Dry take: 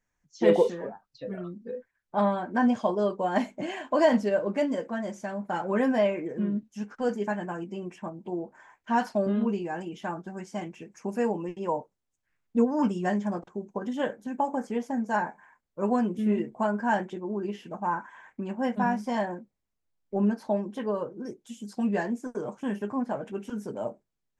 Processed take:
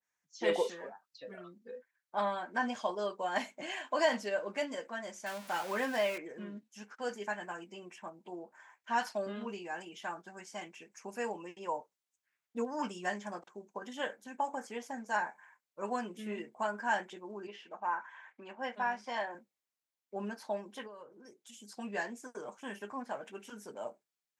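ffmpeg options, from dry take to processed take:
-filter_complex "[0:a]asettb=1/sr,asplit=3[a][b][c];[a]atrim=end=5.264[d];[b]atrim=start=5.26:end=6.18,asetpts=PTS-STARTPTS,afade=t=in:d=0.004:c=qsin,afade=t=out:st=0.916:d=0.004:c=qsin,aeval=exprs='val(0)+0.5*0.0133*sgn(val(0))':c=same[e];[c]atrim=start=6.176[f];[d][e]acrossfade=d=0.004:c1=hsin:c2=qsin[g];[g][f]acrossfade=d=0.004:c1=qsin:c2=hsin,asettb=1/sr,asplit=3[h][i][j];[h]atrim=end=17.474[k];[i]atrim=start=17.47:end=19.35,asetpts=PTS-STARTPTS,afade=t=in:d=0.004:c=qsin,afade=t=out:st=1.876:d=0.004:c=qsin,highpass=280,lowpass=4.4k[l];[j]atrim=start=19.346[m];[k][l]acrossfade=d=0.004:c1=hsin:c2=qsin[n];[n][m]acrossfade=d=0.004:c1=qsin:c2=hsin,asplit=3[o][p][q];[o]afade=t=out:st=20.86:d=0.02[r];[p]acompressor=threshold=-41dB:ratio=3:attack=3.2:release=140:knee=1:detection=peak,afade=t=in:st=20.86:d=0.02,afade=t=out:st=21.52:d=0.02[s];[q]afade=t=in:st=21.52:d=0.02[t];[r][s][t]amix=inputs=3:normalize=0,highpass=f=1.2k:p=1,adynamicequalizer=threshold=0.00631:dfrequency=1600:dqfactor=0.7:tfrequency=1600:tqfactor=0.7:attack=5:release=100:ratio=0.375:range=1.5:mode=boostabove:tftype=highshelf,volume=-1.5dB"

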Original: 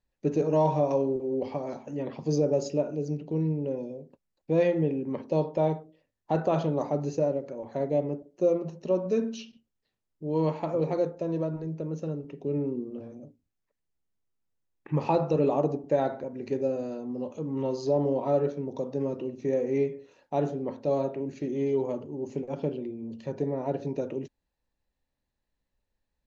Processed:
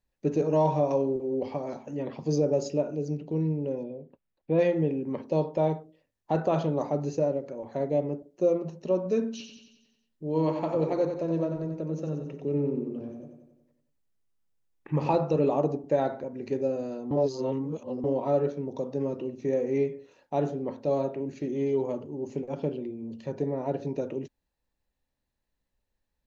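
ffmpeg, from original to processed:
-filter_complex "[0:a]asettb=1/sr,asplit=3[a][b][c];[a]atrim=end=3.834[d];[b]atrim=start=3.83:end=4.59,asetpts=PTS-STARTPTS,afade=t=in:d=0.004:c=qsin,afade=t=out:st=0.756:d=0.004:c=qsin,lowpass=f=3.5k:w=0.5412,lowpass=f=3.5k:w=1.3066[e];[c]atrim=start=4.586[f];[d][e]acrossfade=d=0.004:c1=hsin:c2=qsin[g];[g][f]acrossfade=d=0.004:c1=qsin:c2=hsin,asettb=1/sr,asplit=3[h][i][j];[h]atrim=end=9.314[k];[i]atrim=start=9.31:end=15.14,asetpts=PTS-STARTPTS,afade=t=in:d=0.004:c=qsin,afade=t=out:st=5.826:d=0.004:c=qsin,aecho=1:1:91|182|273|364|455|546|637:0.447|0.25|0.14|0.0784|0.0439|0.0246|0.0138,atrim=end_sample=257103[l];[j]atrim=start=15.136[m];[k][l]acrossfade=d=0.004:c1=hsin:c2=qsin[n];[n][m]acrossfade=d=0.004:c1=qsin:c2=hsin,asplit=3[o][p][q];[o]atrim=end=17.112[r];[p]atrim=start=17.108:end=18.042,asetpts=PTS-STARTPTS,areverse[s];[q]atrim=start=18.038[t];[r][s]acrossfade=d=0.004:c1=hsin:c2=hsin[u];[u][t]acrossfade=d=0.004:c1=hsin:c2=hsin"

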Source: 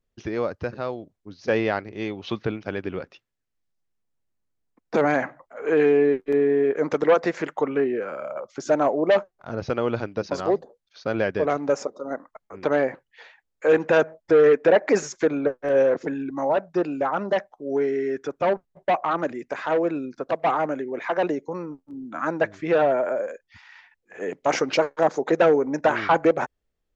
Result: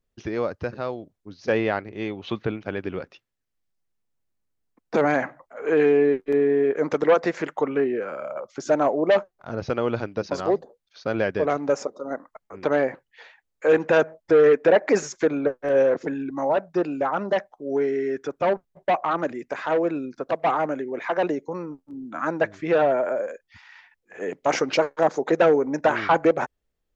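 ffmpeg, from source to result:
-filter_complex "[0:a]asettb=1/sr,asplit=3[a][b][c];[a]atrim=end=1.524[d];[b]atrim=start=1.52:end=2.81,asetpts=PTS-STARTPTS,afade=t=in:d=0.004:c=qsin,afade=t=out:st=1.286:d=0.004:c=qsin,equalizer=f=5.3k:t=o:w=0.51:g=-7.5[e];[c]atrim=start=2.806[f];[d][e]acrossfade=d=0.004:c1=hsin:c2=qsin[g];[g][f]acrossfade=d=0.004:c1=qsin:c2=hsin"

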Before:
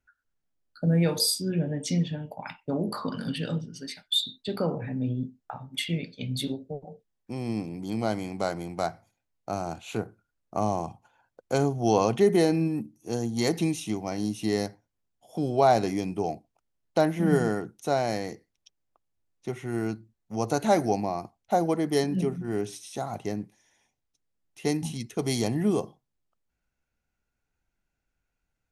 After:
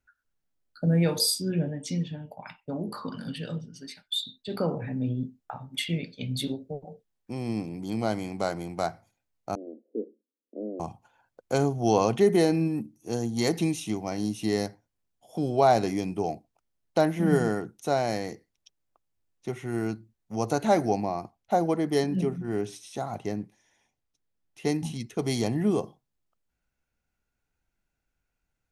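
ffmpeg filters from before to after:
-filter_complex "[0:a]asplit=3[a][b][c];[a]afade=t=out:st=1.69:d=0.02[d];[b]flanger=delay=0.7:depth=1.1:regen=-70:speed=1:shape=sinusoidal,afade=t=in:st=1.69:d=0.02,afade=t=out:st=4.5:d=0.02[e];[c]afade=t=in:st=4.5:d=0.02[f];[d][e][f]amix=inputs=3:normalize=0,asettb=1/sr,asplit=3[g][h][i];[g]atrim=end=9.554[j];[h]atrim=start=9.55:end=10.8,asetpts=PTS-STARTPTS,afade=t=in:d=0.004:c=qsin,afade=t=out:st=1.246:d=0.004:c=qsin,asuperpass=centerf=350:order=12:qfactor=1.1[k];[i]atrim=start=10.796[l];[j][k]acrossfade=d=0.004:c1=hsin:c2=qsin[m];[m][l]acrossfade=d=0.004:c1=qsin:c2=hsin,asettb=1/sr,asplit=3[n][o][p];[n]atrim=end=20.534[q];[o]atrim=start=20.53:end=25.84,asetpts=PTS-STARTPTS,afade=t=in:d=0.004:c=qsin,afade=t=out:st=5.306:d=0.004:c=qsin,highshelf=f=6k:g=-5.5[r];[p]atrim=start=25.836[s];[q][r]acrossfade=d=0.004:c1=hsin:c2=qsin[t];[t][s]acrossfade=d=0.004:c1=qsin:c2=hsin"

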